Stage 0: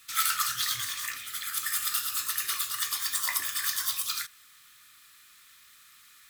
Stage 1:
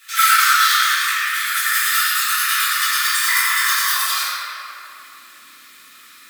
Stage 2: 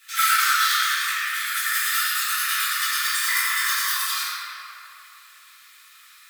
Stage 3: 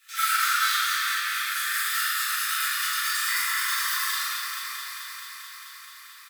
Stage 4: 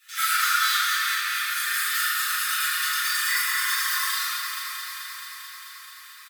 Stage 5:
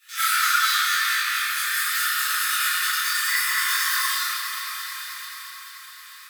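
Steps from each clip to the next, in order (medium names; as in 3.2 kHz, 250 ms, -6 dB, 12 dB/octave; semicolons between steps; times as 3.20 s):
high-pass sweep 1.5 kHz -> 250 Hz, 3.32–5.05 s; simulated room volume 150 m³, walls hard, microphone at 1.6 m; trim +2 dB
high-pass 970 Hz 12 dB/octave; trim -5 dB
doubling 40 ms -4 dB; echo whose repeats swap between lows and highs 109 ms, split 1.6 kHz, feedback 89%, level -6.5 dB; endings held to a fixed fall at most 360 dB/s; trim -6.5 dB
comb 5.6 ms
detune thickener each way 27 cents; trim +5.5 dB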